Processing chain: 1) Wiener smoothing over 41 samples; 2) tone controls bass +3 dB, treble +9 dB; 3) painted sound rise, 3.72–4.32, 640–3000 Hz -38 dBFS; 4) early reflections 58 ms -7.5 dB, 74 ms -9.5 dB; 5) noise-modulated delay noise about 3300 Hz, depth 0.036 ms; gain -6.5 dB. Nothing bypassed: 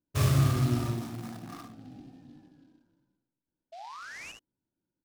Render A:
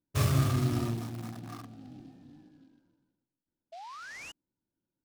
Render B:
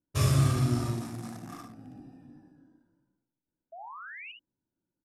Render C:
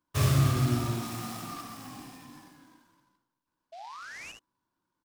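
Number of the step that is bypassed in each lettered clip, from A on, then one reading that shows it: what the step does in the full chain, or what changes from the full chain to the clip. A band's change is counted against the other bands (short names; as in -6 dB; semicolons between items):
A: 4, momentary loudness spread change -1 LU; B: 5, 8 kHz band +2.0 dB; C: 1, 125 Hz band -2.0 dB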